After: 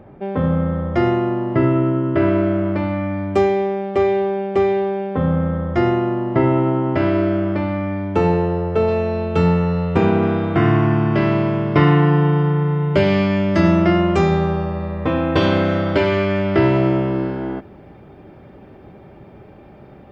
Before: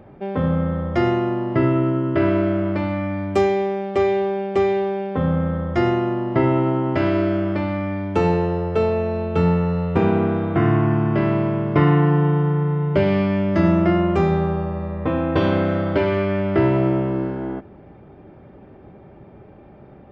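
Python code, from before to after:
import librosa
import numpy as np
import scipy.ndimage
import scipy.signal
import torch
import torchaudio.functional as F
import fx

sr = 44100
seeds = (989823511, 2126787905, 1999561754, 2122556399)

y = fx.high_shelf(x, sr, hz=3300.0, db=fx.steps((0.0, -5.5), (8.87, 6.5), (10.22, 11.5)))
y = F.gain(torch.from_numpy(y), 2.0).numpy()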